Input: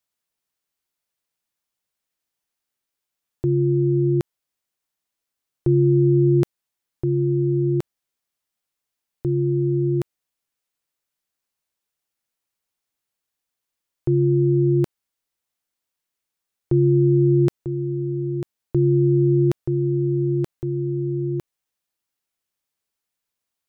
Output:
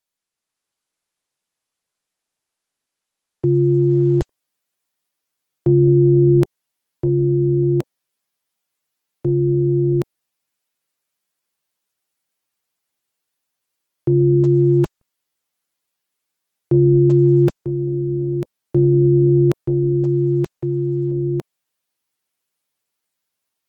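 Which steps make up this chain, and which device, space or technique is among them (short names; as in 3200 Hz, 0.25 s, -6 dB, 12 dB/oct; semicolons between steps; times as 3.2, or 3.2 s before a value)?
14.22–14.82 dynamic EQ 760 Hz, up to +4 dB, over -44 dBFS, Q 2.9; video call (HPF 100 Hz 12 dB/oct; AGC gain up to 4.5 dB; Opus 16 kbps 48000 Hz)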